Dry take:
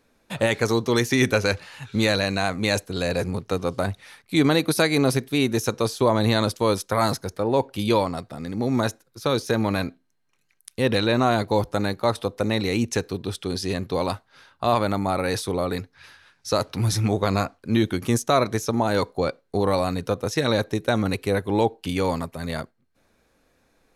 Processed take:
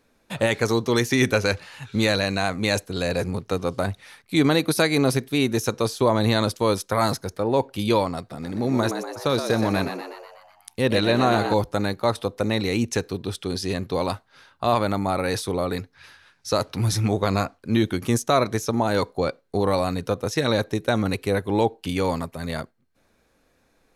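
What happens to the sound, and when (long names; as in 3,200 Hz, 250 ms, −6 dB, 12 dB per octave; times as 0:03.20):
0:08.19–0:11.54: echo with shifted repeats 122 ms, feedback 57%, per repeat +90 Hz, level −8 dB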